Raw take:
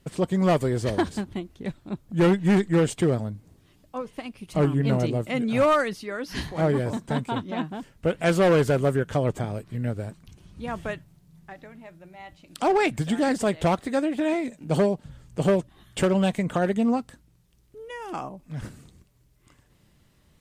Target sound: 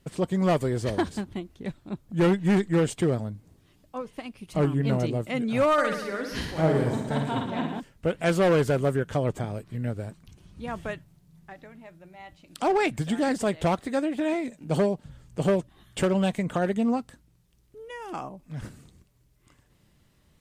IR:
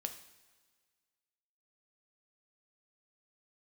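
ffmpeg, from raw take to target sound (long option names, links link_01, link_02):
-filter_complex "[0:a]asettb=1/sr,asplit=3[link_01][link_02][link_03];[link_01]atrim=end=5.734[link_04];[link_02]atrim=start=5.73:end=7.8,asetpts=PTS-STARTPTS,afade=type=in:duration=0.004:curve=qsin,afade=type=out:start_time=2.066:duration=0.004:curve=qsin,aecho=1:1:50|112.5|190.6|288.3|410.4:0.631|0.398|0.251|0.158|0.1,atrim=end_sample=91287[link_05];[link_03]atrim=start=7.796[link_06];[link_04][link_05]acrossfade=duration=0.004:curve1=hsin:curve2=qsin[link_07];[link_07][link_06]acrossfade=duration=0.004:curve1=qsin:curve2=hsin,volume=-2dB"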